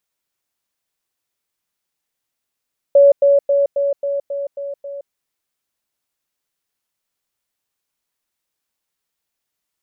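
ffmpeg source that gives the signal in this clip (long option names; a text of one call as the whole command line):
ffmpeg -f lavfi -i "aevalsrc='pow(10,(-5.5-3*floor(t/0.27))/20)*sin(2*PI*563*t)*clip(min(mod(t,0.27),0.17-mod(t,0.27))/0.005,0,1)':duration=2.16:sample_rate=44100" out.wav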